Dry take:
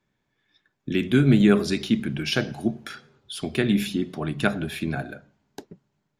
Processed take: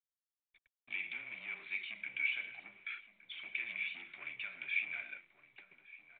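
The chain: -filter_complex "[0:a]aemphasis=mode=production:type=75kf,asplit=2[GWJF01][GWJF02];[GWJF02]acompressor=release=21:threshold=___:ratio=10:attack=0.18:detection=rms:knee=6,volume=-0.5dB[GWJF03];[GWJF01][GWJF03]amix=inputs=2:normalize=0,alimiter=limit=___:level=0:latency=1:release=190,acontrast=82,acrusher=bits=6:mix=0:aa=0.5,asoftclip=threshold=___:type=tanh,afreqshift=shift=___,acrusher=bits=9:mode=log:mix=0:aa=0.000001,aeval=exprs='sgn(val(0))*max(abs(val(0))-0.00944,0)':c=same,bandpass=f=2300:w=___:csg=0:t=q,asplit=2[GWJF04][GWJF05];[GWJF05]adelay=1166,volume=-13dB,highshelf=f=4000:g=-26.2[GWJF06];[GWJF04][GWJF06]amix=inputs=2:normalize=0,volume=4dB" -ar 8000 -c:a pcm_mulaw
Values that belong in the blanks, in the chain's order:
-30dB, -13dB, -20.5dB, -19, 20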